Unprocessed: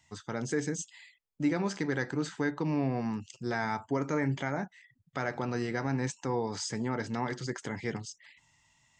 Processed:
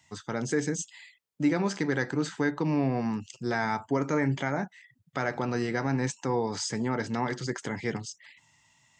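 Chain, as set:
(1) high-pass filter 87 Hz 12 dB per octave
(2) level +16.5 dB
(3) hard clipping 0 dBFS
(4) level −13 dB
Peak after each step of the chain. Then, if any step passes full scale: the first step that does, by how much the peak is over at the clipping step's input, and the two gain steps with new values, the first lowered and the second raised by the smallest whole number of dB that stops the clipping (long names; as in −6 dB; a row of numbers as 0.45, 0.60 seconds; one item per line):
−18.0, −1.5, −1.5, −14.5 dBFS
no step passes full scale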